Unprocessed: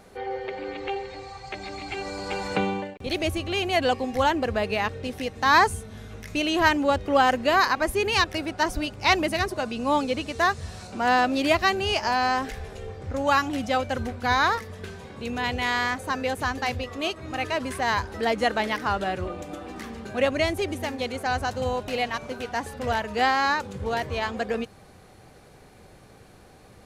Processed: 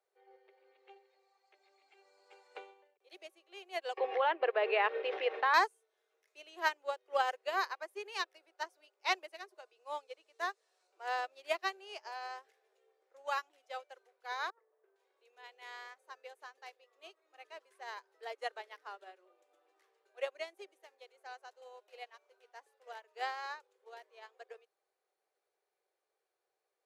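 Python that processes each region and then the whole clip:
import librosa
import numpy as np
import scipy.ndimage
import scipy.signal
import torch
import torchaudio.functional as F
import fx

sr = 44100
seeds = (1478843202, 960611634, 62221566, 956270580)

y = fx.chain(x, sr, fx.lowpass(hz=3000.0, slope=24),
    fx.peak_eq(hz=240.0, db=-6.0, octaves=0.23),
    fx.env_flatten(amount_pct=100), at=(3.97, 5.54))
y = fx.chain(y, sr, fx.lowpass(hz=1000.0, slope=12),
    fx.over_compress(threshold_db=-34.0, ratio=-0.5), at=(14.5, 14.96))
y = scipy.signal.sosfilt(scipy.signal.butter(12, 360.0, 'highpass', fs=sr, output='sos'), y)
y = fx.upward_expand(y, sr, threshold_db=-32.0, expansion=2.5)
y = F.gain(torch.from_numpy(y), -8.0).numpy()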